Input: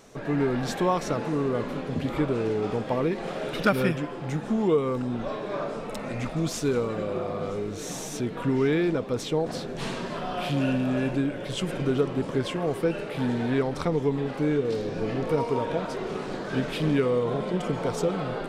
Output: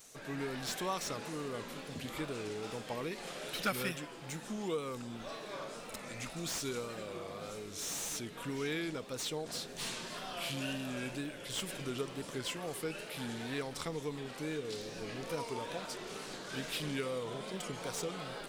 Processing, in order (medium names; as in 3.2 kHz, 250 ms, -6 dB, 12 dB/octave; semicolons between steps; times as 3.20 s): wow and flutter 79 cents; pre-emphasis filter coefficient 0.9; slew-rate limiter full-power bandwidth 52 Hz; trim +4.5 dB